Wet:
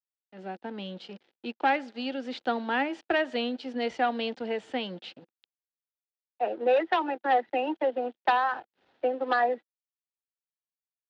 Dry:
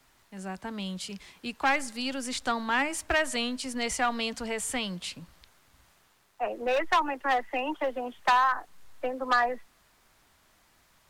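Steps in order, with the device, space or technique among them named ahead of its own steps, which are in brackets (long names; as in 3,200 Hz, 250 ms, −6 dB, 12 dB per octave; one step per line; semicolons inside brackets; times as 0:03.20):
blown loudspeaker (dead-zone distortion −46 dBFS; loudspeaker in its box 210–3,700 Hz, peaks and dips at 230 Hz +4 dB, 340 Hz +7 dB, 490 Hz +6 dB, 780 Hz +5 dB, 1,100 Hz −9 dB, 2,200 Hz −5 dB)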